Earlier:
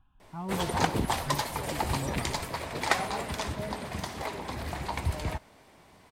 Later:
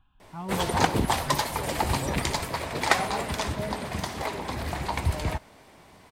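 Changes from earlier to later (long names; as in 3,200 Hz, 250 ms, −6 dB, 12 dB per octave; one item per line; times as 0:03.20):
speech: add high-shelf EQ 2,200 Hz +9.5 dB
background +4.0 dB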